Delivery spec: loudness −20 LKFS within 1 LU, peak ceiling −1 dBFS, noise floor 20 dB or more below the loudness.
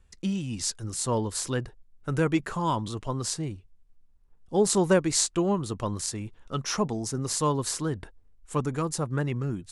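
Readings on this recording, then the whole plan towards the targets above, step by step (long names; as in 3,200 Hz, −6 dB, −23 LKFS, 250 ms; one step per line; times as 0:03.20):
integrated loudness −28.5 LKFS; sample peak −6.5 dBFS; target loudness −20.0 LKFS
→ level +8.5 dB
brickwall limiter −1 dBFS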